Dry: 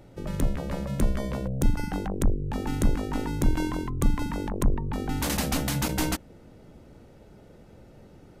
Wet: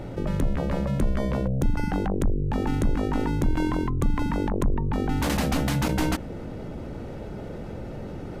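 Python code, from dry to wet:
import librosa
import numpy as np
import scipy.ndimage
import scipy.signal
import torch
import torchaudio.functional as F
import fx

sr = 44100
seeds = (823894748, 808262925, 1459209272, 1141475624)

y = fx.high_shelf(x, sr, hz=4400.0, db=-10.5)
y = fx.env_flatten(y, sr, amount_pct=50)
y = y * librosa.db_to_amplitude(-2.5)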